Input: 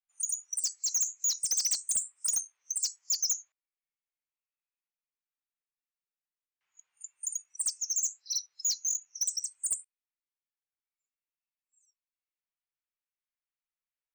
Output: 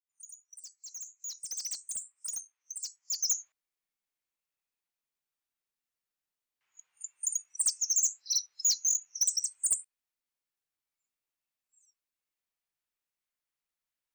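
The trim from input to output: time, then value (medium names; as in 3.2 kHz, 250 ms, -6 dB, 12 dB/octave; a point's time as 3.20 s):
0.73 s -17 dB
1.65 s -8 dB
2.99 s -8 dB
3.39 s +3 dB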